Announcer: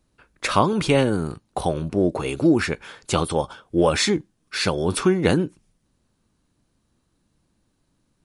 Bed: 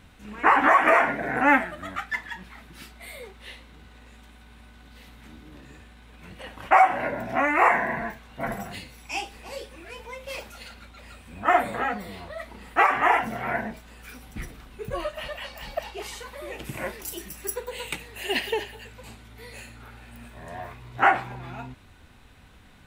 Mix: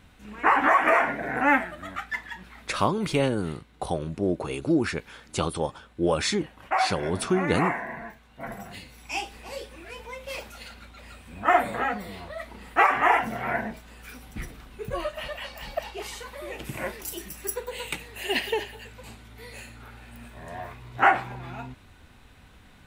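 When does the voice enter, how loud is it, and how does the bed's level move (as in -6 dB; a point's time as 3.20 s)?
2.25 s, -5.5 dB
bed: 2.68 s -2 dB
2.95 s -8 dB
8.34 s -8 dB
9.12 s 0 dB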